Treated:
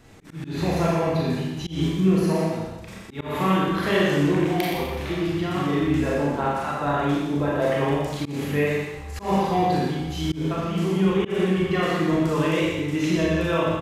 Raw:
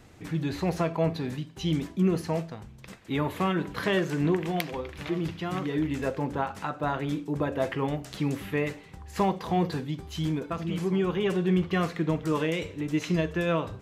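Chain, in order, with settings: echo 0.121 s -7 dB; Schroeder reverb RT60 1 s, combs from 28 ms, DRR -4.5 dB; auto swell 0.171 s

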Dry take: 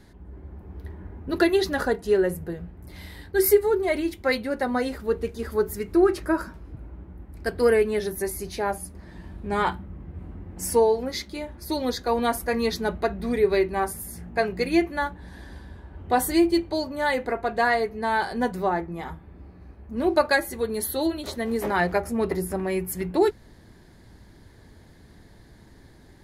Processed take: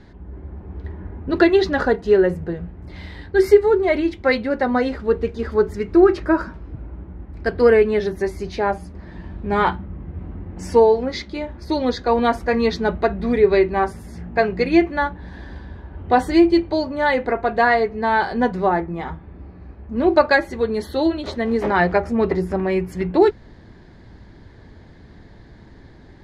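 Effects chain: air absorption 150 m; gain +6.5 dB

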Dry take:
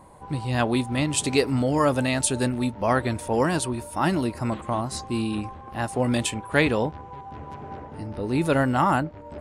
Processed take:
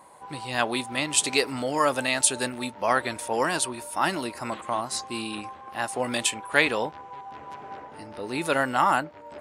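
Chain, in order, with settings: HPF 960 Hz 6 dB/oct; gain +3.5 dB

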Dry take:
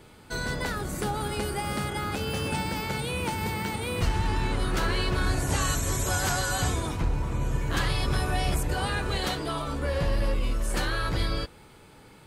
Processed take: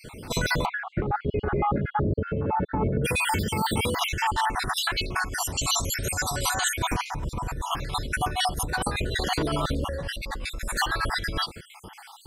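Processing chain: random spectral dropouts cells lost 55%; 0.64–3.04 LPF 2100 Hz -> 1100 Hz 24 dB/oct; negative-ratio compressor -35 dBFS, ratio -1; gain +8 dB

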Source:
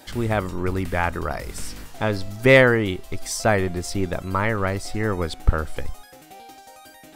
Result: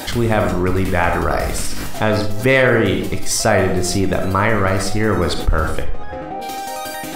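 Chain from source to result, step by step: 5.8–6.41 LPF 2900 Hz -> 1100 Hz 12 dB/oct; digital reverb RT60 0.63 s, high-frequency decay 0.45×, pre-delay 5 ms, DRR 5 dB; maximiser +5.5 dB; fast leveller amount 50%; gain -4.5 dB

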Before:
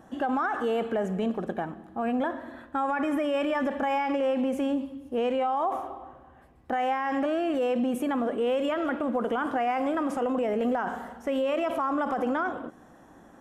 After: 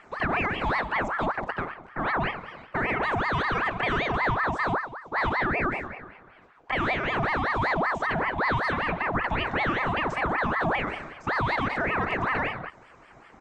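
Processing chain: downsampling 16000 Hz; ring modulator with a swept carrier 980 Hz, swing 60%, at 5.2 Hz; gain +3.5 dB

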